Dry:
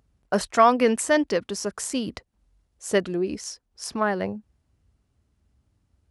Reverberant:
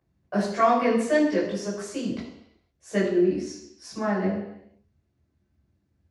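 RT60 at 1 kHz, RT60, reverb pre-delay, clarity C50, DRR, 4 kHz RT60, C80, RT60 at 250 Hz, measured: 0.80 s, 0.80 s, 12 ms, 4.0 dB, -7.5 dB, 0.85 s, 6.5 dB, 0.80 s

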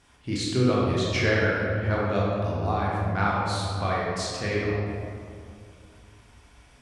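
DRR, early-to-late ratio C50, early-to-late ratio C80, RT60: -5.5 dB, -2.5 dB, 0.0 dB, 2.4 s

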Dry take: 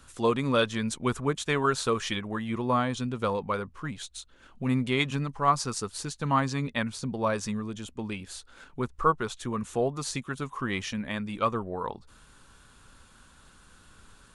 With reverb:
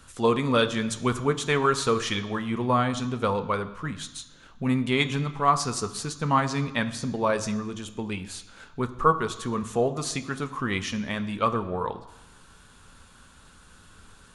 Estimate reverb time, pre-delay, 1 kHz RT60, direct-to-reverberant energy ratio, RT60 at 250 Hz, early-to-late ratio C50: 1.1 s, 3 ms, 1.1 s, 8.5 dB, 1.0 s, 14.0 dB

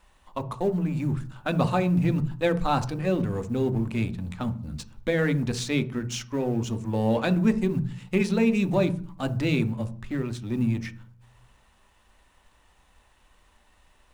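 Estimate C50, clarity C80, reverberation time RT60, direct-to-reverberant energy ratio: 15.5 dB, 21.0 dB, 0.45 s, 9.0 dB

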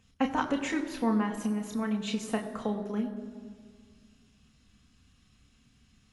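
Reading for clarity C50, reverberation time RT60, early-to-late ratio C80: 10.5 dB, 1.9 s, 11.0 dB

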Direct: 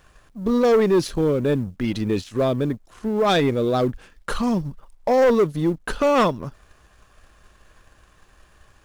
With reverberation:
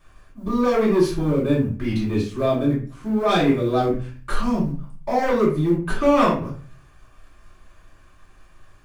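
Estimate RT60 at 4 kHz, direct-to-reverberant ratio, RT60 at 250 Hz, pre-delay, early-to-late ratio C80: 0.30 s, -7.0 dB, 0.55 s, 3 ms, 11.0 dB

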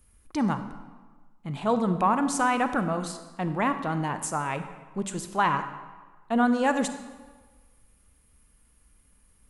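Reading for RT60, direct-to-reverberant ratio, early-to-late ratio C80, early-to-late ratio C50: 1.4 s, 9.5 dB, 11.5 dB, 10.0 dB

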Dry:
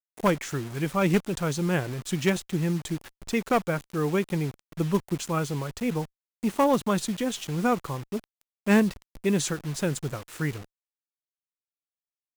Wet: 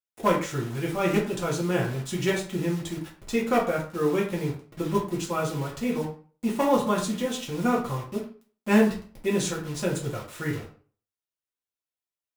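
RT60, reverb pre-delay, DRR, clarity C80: 0.40 s, 3 ms, -4.0 dB, 12.0 dB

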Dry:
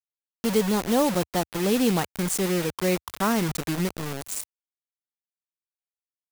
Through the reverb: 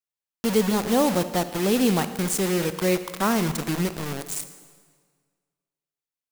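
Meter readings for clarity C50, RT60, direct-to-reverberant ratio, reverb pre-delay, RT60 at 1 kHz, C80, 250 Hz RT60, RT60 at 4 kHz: 11.5 dB, 1.7 s, 11.0 dB, 35 ms, 1.7 s, 13.0 dB, 1.6 s, 1.4 s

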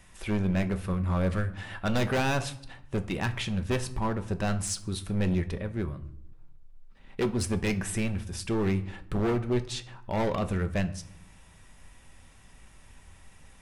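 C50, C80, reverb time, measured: 15.5 dB, 18.5 dB, 0.75 s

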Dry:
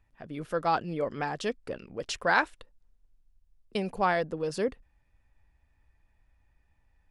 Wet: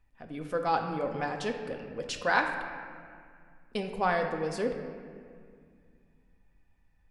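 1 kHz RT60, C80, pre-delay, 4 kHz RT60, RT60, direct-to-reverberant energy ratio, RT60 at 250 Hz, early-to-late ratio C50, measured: 2.0 s, 7.0 dB, 4 ms, 1.4 s, 2.1 s, 3.0 dB, 3.1 s, 6.0 dB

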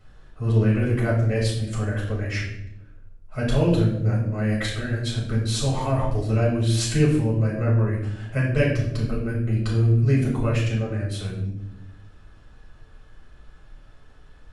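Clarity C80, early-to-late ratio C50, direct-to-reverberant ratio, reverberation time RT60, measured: 7.0 dB, 4.0 dB, -4.5 dB, 0.85 s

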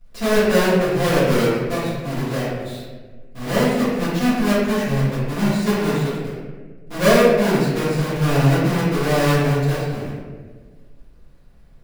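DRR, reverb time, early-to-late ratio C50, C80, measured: -13.0 dB, 1.5 s, -1.5 dB, 1.0 dB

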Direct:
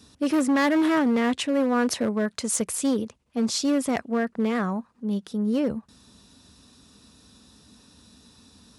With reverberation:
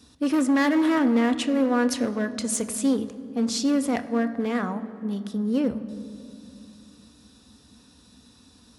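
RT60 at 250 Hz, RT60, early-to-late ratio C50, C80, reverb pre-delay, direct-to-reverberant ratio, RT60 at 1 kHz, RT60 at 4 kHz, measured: 3.8 s, 2.6 s, 13.5 dB, 14.0 dB, 3 ms, 9.0 dB, 2.4 s, 1.6 s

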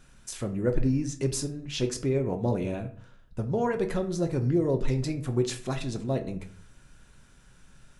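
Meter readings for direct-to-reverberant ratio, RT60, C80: 5.0 dB, 0.55 s, 16.5 dB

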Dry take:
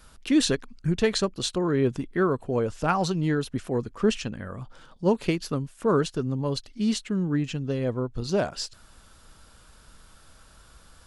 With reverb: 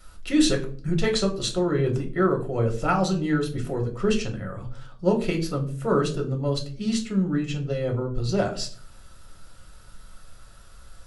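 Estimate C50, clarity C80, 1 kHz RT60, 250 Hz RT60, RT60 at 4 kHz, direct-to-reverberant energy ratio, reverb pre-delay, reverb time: 13.0 dB, 17.0 dB, 0.40 s, 0.65 s, 0.30 s, 1.5 dB, 3 ms, 0.45 s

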